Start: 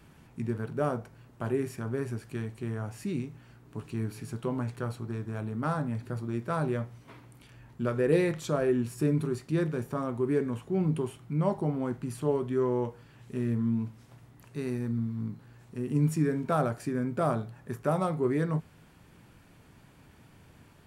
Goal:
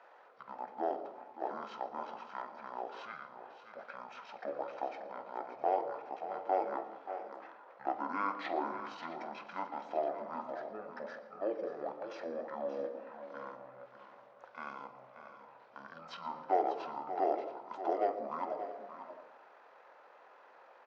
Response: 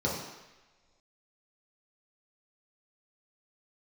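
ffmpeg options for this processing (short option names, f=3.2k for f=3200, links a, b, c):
-filter_complex "[0:a]lowpass=3.5k,asplit=2[a][b];[b]alimiter=level_in=0.5dB:limit=-24dB:level=0:latency=1:release=35,volume=-0.5dB,volume=2dB[c];[a][c]amix=inputs=2:normalize=0,highpass=f=920:w=0.5412,highpass=f=920:w=1.3066,aecho=1:1:48|583|668:0.133|0.282|0.141,asetrate=24750,aresample=44100,atempo=1.7818,asplit=2[d][e];[1:a]atrim=start_sample=2205,adelay=115[f];[e][f]afir=irnorm=-1:irlink=0,volume=-22.5dB[g];[d][g]amix=inputs=2:normalize=0"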